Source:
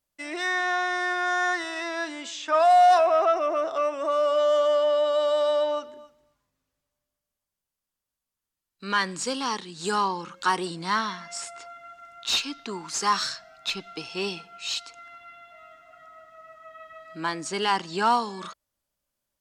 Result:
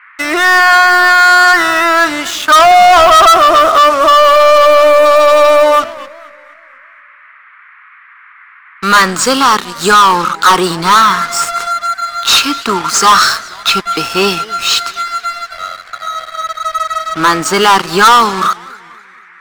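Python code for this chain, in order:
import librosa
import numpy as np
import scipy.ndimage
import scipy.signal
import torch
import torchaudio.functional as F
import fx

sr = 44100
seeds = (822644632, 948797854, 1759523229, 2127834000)

y = fx.peak_eq(x, sr, hz=1300.0, db=14.0, octaves=0.54)
y = fx.leveller(y, sr, passes=5)
y = fx.dmg_noise_band(y, sr, seeds[0], low_hz=1100.0, high_hz=2200.0, level_db=-40.0)
y = fx.echo_warbled(y, sr, ms=240, feedback_pct=44, rate_hz=2.8, cents=190, wet_db=-21)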